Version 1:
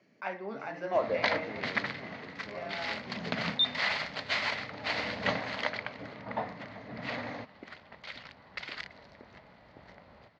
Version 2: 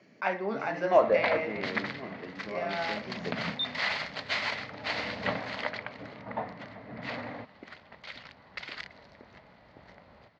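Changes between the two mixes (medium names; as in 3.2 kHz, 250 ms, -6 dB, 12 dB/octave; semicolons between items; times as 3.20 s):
speech +7.0 dB; first sound: add Bessel low-pass 2.6 kHz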